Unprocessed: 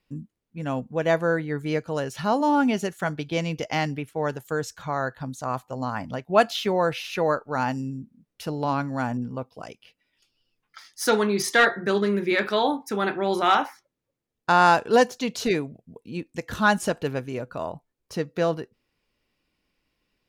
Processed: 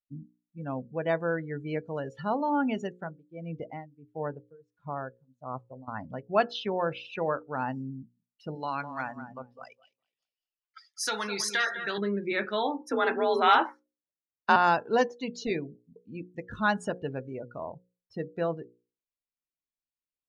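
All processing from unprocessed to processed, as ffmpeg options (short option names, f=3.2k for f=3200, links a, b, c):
-filter_complex "[0:a]asettb=1/sr,asplit=3[a][b][c];[a]atrim=end=2.924[d];[b]atrim=start=2.92:end=5.88,asetpts=PTS-STARTPTS,afade=t=in:d=0.004:c=qsin,afade=t=out:st=2.956:d=0.004:c=qsin,lowpass=f=1.5k:p=1,tremolo=f=1.5:d=0.89[e];[c]atrim=start=5.876[f];[d][e]acrossfade=d=0.004:c1=hsin:c2=qsin[g];[g][f]acrossfade=d=0.004:c1=qsin:c2=hsin,asettb=1/sr,asplit=3[h][i][j];[h]atrim=end=8.554[k];[i]atrim=start=8.55:end=11.98,asetpts=PTS-STARTPTS,afade=t=in:d=0.004:c=qsin,afade=t=out:st=3.426:d=0.004:c=qsin,tiltshelf=f=810:g=-9,acompressor=threshold=-20dB:ratio=2.5:attack=3.2:release=140:knee=1:detection=peak,asplit=2[l][m];[m]adelay=205,lowpass=f=4.2k:p=1,volume=-9dB,asplit=2[n][o];[o]adelay=205,lowpass=f=4.2k:p=1,volume=0.32,asplit=2[p][q];[q]adelay=205,lowpass=f=4.2k:p=1,volume=0.32,asplit=2[r][s];[s]adelay=205,lowpass=f=4.2k:p=1,volume=0.32[t];[l][n][p][r][t]amix=inputs=5:normalize=0,atrim=end_sample=151263[u];[j]atrim=start=11.976[v];[k][u]acrossfade=d=0.004:c1=hsin:c2=qsin[w];[w][v]acrossfade=d=0.004:c1=qsin:c2=hsin,asettb=1/sr,asplit=3[x][y][z];[x]atrim=end=12.814[aa];[y]atrim=start=12.81:end=14.56,asetpts=PTS-STARTPTS,afade=t=in:d=0.004:c=qsin,afade=t=out:st=1.746:d=0.004:c=qsin,acontrast=42,afreqshift=44[ab];[z]atrim=start=14.556[ac];[aa][ab]acrossfade=d=0.004:c1=hsin:c2=qsin[ad];[ad][ac]acrossfade=d=0.004:c1=qsin:c2=hsin,afftdn=nr=25:nf=-33,lowpass=9k,bandreject=f=60:t=h:w=6,bandreject=f=120:t=h:w=6,bandreject=f=180:t=h:w=6,bandreject=f=240:t=h:w=6,bandreject=f=300:t=h:w=6,bandreject=f=360:t=h:w=6,bandreject=f=420:t=h:w=6,bandreject=f=480:t=h:w=6,bandreject=f=540:t=h:w=6,volume=-6dB"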